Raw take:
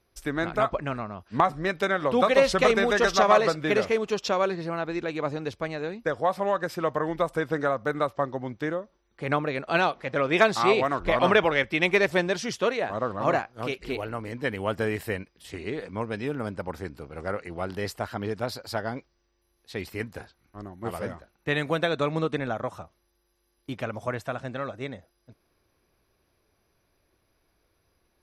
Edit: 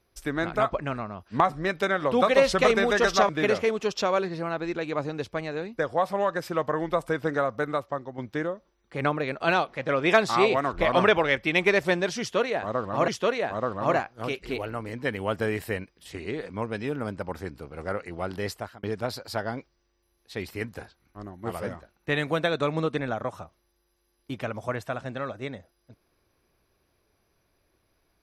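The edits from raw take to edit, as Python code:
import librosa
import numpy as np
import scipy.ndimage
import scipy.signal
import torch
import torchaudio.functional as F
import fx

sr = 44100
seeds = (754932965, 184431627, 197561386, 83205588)

y = fx.edit(x, sr, fx.cut(start_s=3.29, length_s=0.27),
    fx.fade_out_to(start_s=7.8, length_s=0.65, floor_db=-8.0),
    fx.repeat(start_s=12.47, length_s=0.88, count=2),
    fx.fade_out_span(start_s=17.9, length_s=0.32), tone=tone)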